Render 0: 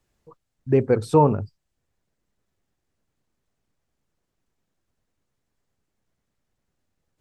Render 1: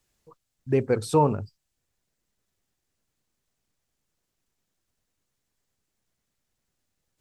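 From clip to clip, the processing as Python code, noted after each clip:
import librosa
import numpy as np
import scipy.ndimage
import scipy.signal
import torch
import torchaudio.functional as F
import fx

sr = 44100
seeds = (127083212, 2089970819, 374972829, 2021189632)

y = fx.high_shelf(x, sr, hz=2400.0, db=10.0)
y = F.gain(torch.from_numpy(y), -4.5).numpy()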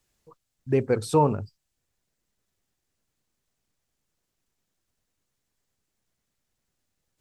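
y = x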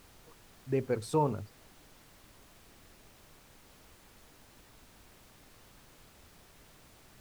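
y = fx.dmg_noise_colour(x, sr, seeds[0], colour='pink', level_db=-50.0)
y = F.gain(torch.from_numpy(y), -8.0).numpy()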